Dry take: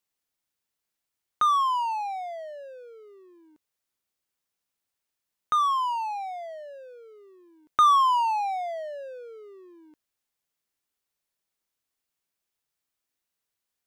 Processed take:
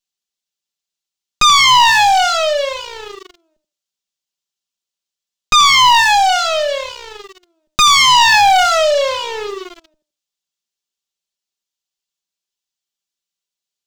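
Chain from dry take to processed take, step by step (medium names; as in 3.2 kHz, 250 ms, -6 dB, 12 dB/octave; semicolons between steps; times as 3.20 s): comb filter that takes the minimum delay 5.1 ms; on a send: tape echo 81 ms, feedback 23%, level -10.5 dB, low-pass 2.5 kHz; on the sum: waveshaping leveller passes 5; high-order bell 4.6 kHz +10 dB; loudness maximiser +6.5 dB; trim -1 dB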